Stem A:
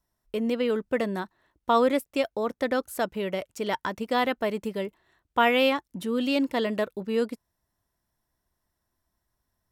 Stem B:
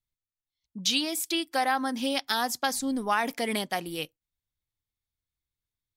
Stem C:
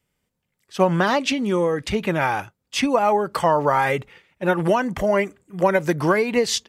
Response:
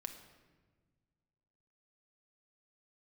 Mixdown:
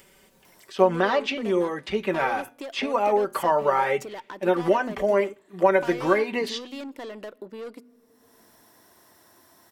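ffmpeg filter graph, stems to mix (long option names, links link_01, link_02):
-filter_complex "[0:a]highpass=frequency=100:width=0.5412,highpass=frequency=100:width=1.3066,asoftclip=type=tanh:threshold=-25.5dB,adelay=450,volume=1dB,asplit=2[link_01][link_02];[link_02]volume=-22.5dB[link_03];[2:a]acrossover=split=4400[link_04][link_05];[link_05]acompressor=threshold=-49dB:ratio=4:attack=1:release=60[link_06];[link_04][link_06]amix=inputs=2:normalize=0,aecho=1:1:5.2:0.59,flanger=delay=8.8:depth=2.1:regen=-81:speed=0.55:shape=triangular,volume=-0.5dB[link_07];[link_01]acompressor=threshold=-37dB:ratio=6,volume=0dB[link_08];[3:a]atrim=start_sample=2205[link_09];[link_03][link_09]afir=irnorm=-1:irlink=0[link_10];[link_07][link_08][link_10]amix=inputs=3:normalize=0,lowshelf=frequency=230:width_type=q:width=1.5:gain=-7,bandreject=frequency=123.3:width_type=h:width=4,bandreject=frequency=246.6:width_type=h:width=4,acompressor=mode=upward:threshold=-37dB:ratio=2.5"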